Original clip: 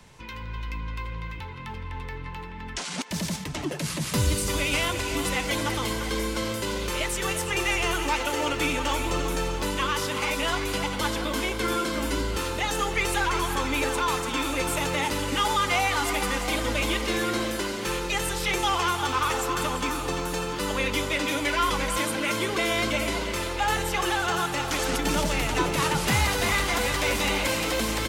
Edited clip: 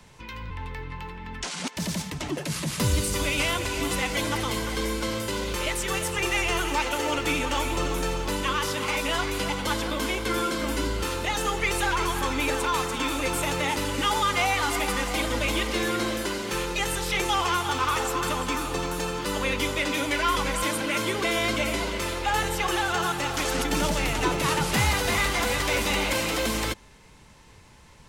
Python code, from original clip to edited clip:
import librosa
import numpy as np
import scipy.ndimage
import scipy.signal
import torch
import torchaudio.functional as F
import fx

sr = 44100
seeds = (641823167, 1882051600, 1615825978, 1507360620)

y = fx.edit(x, sr, fx.cut(start_s=0.5, length_s=1.34), tone=tone)